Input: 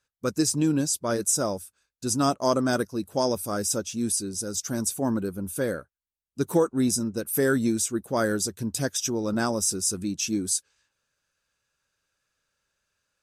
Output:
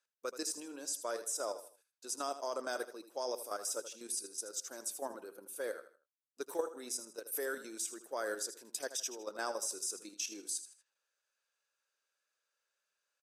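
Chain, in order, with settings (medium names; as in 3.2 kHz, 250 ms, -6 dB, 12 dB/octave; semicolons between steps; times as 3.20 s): high-pass 420 Hz 24 dB/octave; level held to a coarse grid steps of 10 dB; feedback delay 79 ms, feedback 33%, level -12 dB; trim -7 dB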